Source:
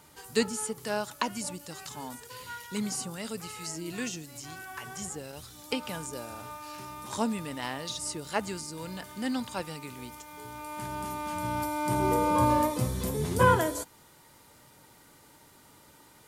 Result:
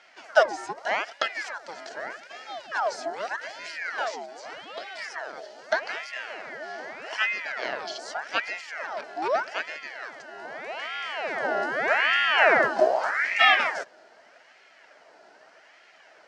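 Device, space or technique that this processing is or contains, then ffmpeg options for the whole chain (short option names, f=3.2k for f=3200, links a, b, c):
voice changer toy: -af "aeval=exprs='val(0)*sin(2*PI*1400*n/s+1400*0.65/0.82*sin(2*PI*0.82*n/s))':c=same,highpass=420,equalizer=f=640:t=q:w=4:g=9,equalizer=f=1.1k:t=q:w=4:g=-7,equalizer=f=1.6k:t=q:w=4:g=3,equalizer=f=2.5k:t=q:w=4:g=-5,equalizer=f=3.6k:t=q:w=4:g=-10,lowpass=f=4.8k:w=0.5412,lowpass=f=4.8k:w=1.3066,volume=8dB"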